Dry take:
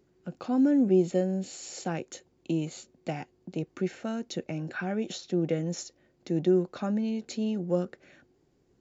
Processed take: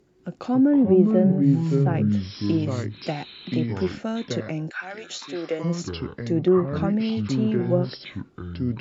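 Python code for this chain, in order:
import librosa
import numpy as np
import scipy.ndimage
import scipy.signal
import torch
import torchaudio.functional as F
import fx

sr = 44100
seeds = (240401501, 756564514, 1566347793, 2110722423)

y = fx.echo_pitch(x, sr, ms=189, semitones=-5, count=2, db_per_echo=-3.0)
y = fx.highpass(y, sr, hz=fx.line((4.69, 1200.0), (5.63, 390.0)), slope=12, at=(4.69, 5.63), fade=0.02)
y = fx.env_lowpass_down(y, sr, base_hz=1900.0, full_db=-21.0)
y = y * 10.0 ** (5.0 / 20.0)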